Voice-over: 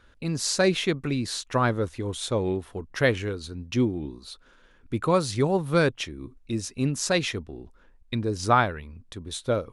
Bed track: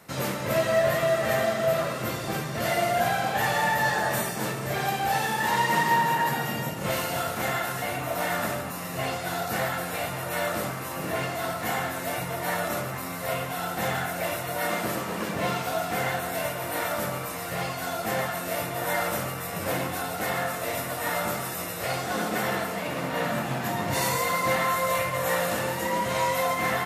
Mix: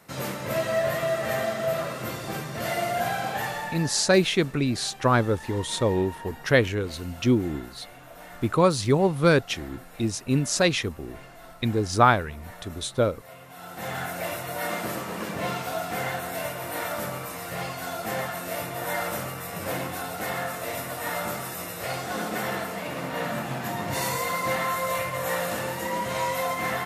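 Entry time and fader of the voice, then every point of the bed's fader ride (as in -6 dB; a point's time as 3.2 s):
3.50 s, +2.5 dB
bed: 3.33 s -2.5 dB
4.05 s -17 dB
13.37 s -17 dB
14.03 s -2 dB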